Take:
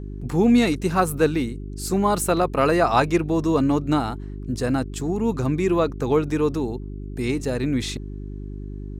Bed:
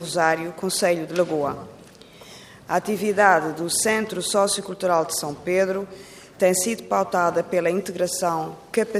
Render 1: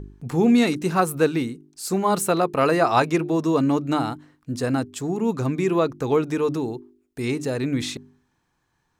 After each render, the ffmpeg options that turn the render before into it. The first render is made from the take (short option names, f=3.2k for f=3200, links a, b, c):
-af "bandreject=f=50:t=h:w=4,bandreject=f=100:t=h:w=4,bandreject=f=150:t=h:w=4,bandreject=f=200:t=h:w=4,bandreject=f=250:t=h:w=4,bandreject=f=300:t=h:w=4,bandreject=f=350:t=h:w=4,bandreject=f=400:t=h:w=4"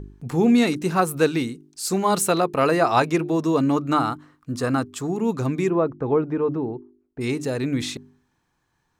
-filter_complex "[0:a]asettb=1/sr,asplit=3[a][b][c];[a]atrim=end=1.164[d];[b]atrim=start=1.16:end=2.41,asetpts=PTS-STARTPTS,afade=t=in:d=0.004:c=qsin,afade=t=out:st=1.246:d=0.004:c=qsin,equalizer=f=5.4k:w=0.46:g=4.5[e];[c]atrim=start=2.406[f];[d][e]acrossfade=d=0.004:c1=hsin:c2=qsin[g];[g][f]acrossfade=d=0.004:c1=qsin:c2=hsin,asettb=1/sr,asplit=3[h][i][j];[h]atrim=end=3.764[k];[i]atrim=start=3.76:end=5.07,asetpts=PTS-STARTPTS,afade=t=in:d=0.004:c=qsin,afade=t=out:st=1.306:d=0.004:c=qsin,equalizer=f=1.2k:w=3.1:g=9.5[l];[j]atrim=start=5.066[m];[k][l]acrossfade=d=0.004:c1=hsin:c2=qsin[n];[n][m]acrossfade=d=0.004:c1=qsin:c2=hsin,asplit=3[o][p][q];[o]afade=t=out:st=5.68:d=0.02[r];[p]lowpass=1.3k,afade=t=in:st=5.68:d=0.02,afade=t=out:st=7.2:d=0.02[s];[q]afade=t=in:st=7.2:d=0.02[t];[r][s][t]amix=inputs=3:normalize=0"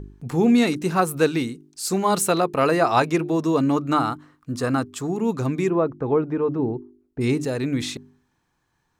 -filter_complex "[0:a]asettb=1/sr,asplit=3[a][b][c];[a]atrim=end=6.594[d];[b]atrim=start=6.59:end=7.45,asetpts=PTS-STARTPTS,afade=t=in:d=0.004:c=qsin,afade=t=out:st=0.856:d=0.004:c=qsin,lowshelf=f=380:g=6[e];[c]atrim=start=7.446[f];[d][e]acrossfade=d=0.004:c1=hsin:c2=qsin[g];[g][f]acrossfade=d=0.004:c1=qsin:c2=hsin"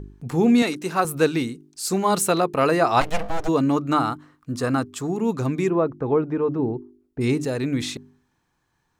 -filter_complex "[0:a]asettb=1/sr,asplit=3[a][b][c];[a]atrim=end=0.624[d];[b]atrim=start=0.62:end=1.05,asetpts=PTS-STARTPTS,afade=t=in:d=0.004:c=qsin,afade=t=out:st=0.426:d=0.004:c=qsin,highpass=f=380:p=1[e];[c]atrim=start=1.046[f];[d][e]acrossfade=d=0.004:c1=hsin:c2=qsin[g];[g][f]acrossfade=d=0.004:c1=qsin:c2=hsin,asplit=3[h][i][j];[h]afade=t=out:st=3:d=0.02[k];[i]aeval=exprs='abs(val(0))':c=same,afade=t=in:st=3:d=0.02,afade=t=out:st=3.47:d=0.02[l];[j]afade=t=in:st=3.47:d=0.02[m];[k][l][m]amix=inputs=3:normalize=0"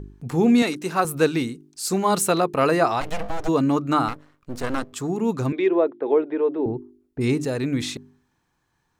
-filter_complex "[0:a]asettb=1/sr,asplit=3[a][b][c];[a]atrim=end=2.894[d];[b]atrim=start=2.89:end=3.46,asetpts=PTS-STARTPTS,afade=t=in:d=0.004:c=qsin,afade=t=out:st=0.566:d=0.004:c=qsin,acompressor=threshold=-19dB:ratio=6:attack=3.2:release=140:knee=1:detection=peak[e];[c]atrim=start=3.456[f];[d][e]acrossfade=d=0.004:c1=hsin:c2=qsin[g];[g][f]acrossfade=d=0.004:c1=qsin:c2=hsin,asettb=1/sr,asplit=3[h][i][j];[h]atrim=end=4.084[k];[i]atrim=start=4.08:end=4.93,asetpts=PTS-STARTPTS,afade=t=in:d=0.004:c=qsin,afade=t=out:st=0.846:d=0.004:c=qsin,aeval=exprs='max(val(0),0)':c=same[l];[j]atrim=start=4.926[m];[k][l]acrossfade=d=0.004:c1=hsin:c2=qsin[n];[n][m]acrossfade=d=0.004:c1=qsin:c2=hsin,asettb=1/sr,asplit=3[o][p][q];[o]atrim=end=5.524[r];[p]atrim=start=5.52:end=6.66,asetpts=PTS-STARTPTS,afade=t=in:d=0.004:c=qsin,afade=t=out:st=1.136:d=0.004:c=qsin,highpass=f=300:w=0.5412,highpass=f=300:w=1.3066,equalizer=f=380:t=q:w=4:g=4,equalizer=f=600:t=q:w=4:g=4,equalizer=f=1.2k:t=q:w=4:g=-7,equalizer=f=2k:t=q:w=4:g=4,equalizer=f=3.5k:t=q:w=4:g=9,lowpass=f=3.6k:w=0.5412,lowpass=f=3.6k:w=1.3066[s];[q]atrim=start=6.656[t];[r][s]acrossfade=d=0.004:c1=hsin:c2=qsin[u];[u][t]acrossfade=d=0.004:c1=qsin:c2=hsin"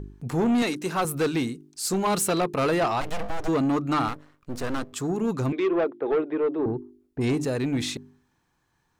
-af "asoftclip=type=tanh:threshold=-18.5dB"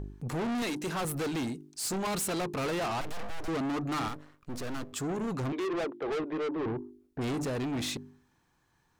-af "asoftclip=type=tanh:threshold=-30dB"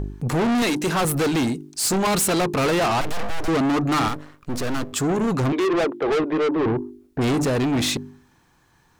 -af "volume=11.5dB"